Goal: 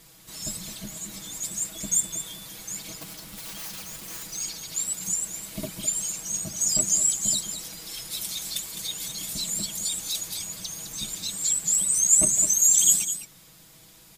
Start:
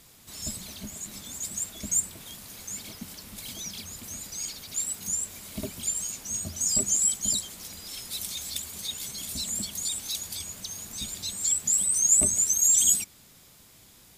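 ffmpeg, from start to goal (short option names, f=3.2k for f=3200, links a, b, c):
-filter_complex "[0:a]asettb=1/sr,asplit=3[a][b][c];[a]atrim=end=1.844[d];[b]atrim=start=1.84:end=2.45,asetpts=PTS-STARTPTS,afade=t=in:d=0.004:c=qsin,afade=t=out:st=0.606:d=0.004:c=qsin,aeval=exprs='val(0)+0.00501*sin(2*PI*3500*n/s)':c=same[e];[c]atrim=start=2.446[f];[d][e]acrossfade=d=0.004:c1=hsin:c2=qsin[g];[g][f]acrossfade=d=0.004:c1=qsin:c2=hsin,asettb=1/sr,asplit=3[h][i][j];[h]atrim=end=3.014[k];[i]atrim=start=3.01:end=4.23,asetpts=PTS-STARTPTS,afade=t=in:d=0.004:c=qsin,afade=t=out:st=1.216:d=0.004:c=qsin,aeval=exprs='(mod(50.1*val(0)+1,2)-1)/50.1':c=same[l];[j]atrim=start=4.226[m];[k][l]acrossfade=d=0.004:c1=hsin:c2=qsin[n];[n][m]acrossfade=d=0.004:c1=qsin:c2=hsin,aecho=1:1:6.2:0.76,asplit=2[o][p];[p]aecho=0:1:208:0.316[q];[o][q]amix=inputs=2:normalize=0"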